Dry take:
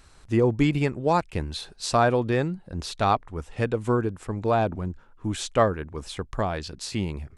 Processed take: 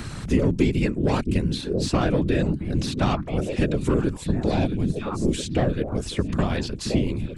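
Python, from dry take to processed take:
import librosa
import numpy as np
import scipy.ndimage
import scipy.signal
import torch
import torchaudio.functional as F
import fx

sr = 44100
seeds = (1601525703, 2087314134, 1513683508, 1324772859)

y = fx.peak_eq(x, sr, hz=1200.0, db=-12.0, octaves=0.56, at=(3.94, 5.99))
y = fx.echo_stepped(y, sr, ms=668, hz=170.0, octaves=1.4, feedback_pct=70, wet_db=-7.5)
y = 10.0 ** (-15.0 / 20.0) * np.tanh(y / 10.0 ** (-15.0 / 20.0))
y = fx.curve_eq(y, sr, hz=(270.0, 750.0, 2800.0), db=(0, -11, -3))
y = fx.whisperise(y, sr, seeds[0])
y = fx.band_squash(y, sr, depth_pct=70)
y = y * librosa.db_to_amplitude(6.0)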